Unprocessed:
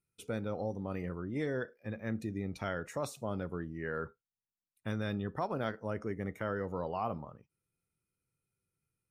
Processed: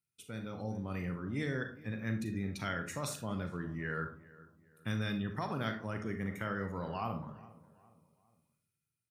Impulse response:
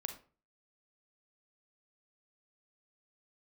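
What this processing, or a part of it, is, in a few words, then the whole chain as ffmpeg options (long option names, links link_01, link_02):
far laptop microphone: -filter_complex "[0:a]equalizer=frequency=550:width=0.58:gain=-12[link_01];[1:a]atrim=start_sample=2205[link_02];[link_01][link_02]afir=irnorm=-1:irlink=0,highpass=100,dynaudnorm=framelen=120:gausssize=9:maxgain=7.5dB,asplit=2[link_03][link_04];[link_04]adelay=409,lowpass=frequency=2000:poles=1,volume=-19dB,asplit=2[link_05][link_06];[link_06]adelay=409,lowpass=frequency=2000:poles=1,volume=0.42,asplit=2[link_07][link_08];[link_08]adelay=409,lowpass=frequency=2000:poles=1,volume=0.42[link_09];[link_03][link_05][link_07][link_09]amix=inputs=4:normalize=0"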